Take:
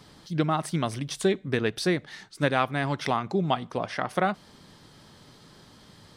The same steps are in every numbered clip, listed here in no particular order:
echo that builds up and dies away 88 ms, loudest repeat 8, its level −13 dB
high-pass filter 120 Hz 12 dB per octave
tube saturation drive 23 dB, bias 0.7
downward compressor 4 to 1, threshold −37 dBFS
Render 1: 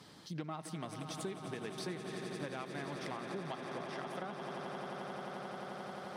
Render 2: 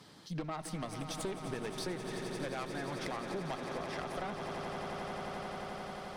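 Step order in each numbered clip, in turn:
echo that builds up and dies away, then downward compressor, then tube saturation, then high-pass filter
high-pass filter, then tube saturation, then echo that builds up and dies away, then downward compressor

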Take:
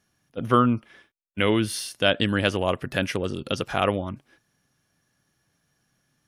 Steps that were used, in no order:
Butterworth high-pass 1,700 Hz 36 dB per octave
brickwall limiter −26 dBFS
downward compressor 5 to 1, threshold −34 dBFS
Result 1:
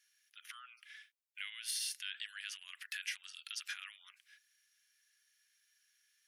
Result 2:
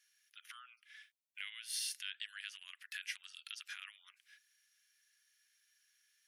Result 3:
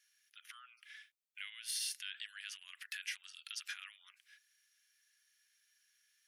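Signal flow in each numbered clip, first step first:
brickwall limiter, then Butterworth high-pass, then downward compressor
downward compressor, then brickwall limiter, then Butterworth high-pass
brickwall limiter, then downward compressor, then Butterworth high-pass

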